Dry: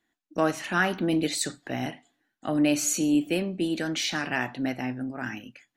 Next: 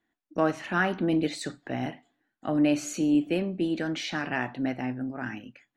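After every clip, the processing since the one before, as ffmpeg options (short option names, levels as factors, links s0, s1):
-af "aemphasis=mode=reproduction:type=75kf"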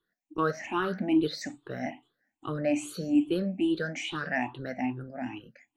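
-af "afftfilt=real='re*pow(10,21/40*sin(2*PI*(0.63*log(max(b,1)*sr/1024/100)/log(2)-(2.4)*(pts-256)/sr)))':imag='im*pow(10,21/40*sin(2*PI*(0.63*log(max(b,1)*sr/1024/100)/log(2)-(2.4)*(pts-256)/sr)))':win_size=1024:overlap=0.75,volume=0.473"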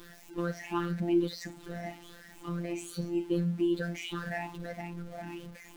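-af "aeval=exprs='val(0)+0.5*0.01*sgn(val(0))':c=same,afftfilt=real='hypot(re,im)*cos(PI*b)':imag='0':win_size=1024:overlap=0.75,lowshelf=f=200:g=9,volume=0.668"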